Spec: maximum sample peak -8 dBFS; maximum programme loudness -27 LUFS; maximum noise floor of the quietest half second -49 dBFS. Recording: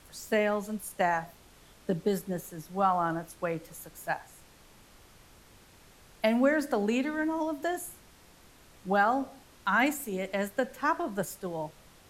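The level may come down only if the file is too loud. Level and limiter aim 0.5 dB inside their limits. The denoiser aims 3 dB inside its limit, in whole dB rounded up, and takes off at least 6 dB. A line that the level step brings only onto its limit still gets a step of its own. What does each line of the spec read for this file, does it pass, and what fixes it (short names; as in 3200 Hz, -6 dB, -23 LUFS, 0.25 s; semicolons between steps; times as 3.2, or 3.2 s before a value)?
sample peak -11.0 dBFS: OK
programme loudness -30.5 LUFS: OK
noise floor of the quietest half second -57 dBFS: OK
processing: none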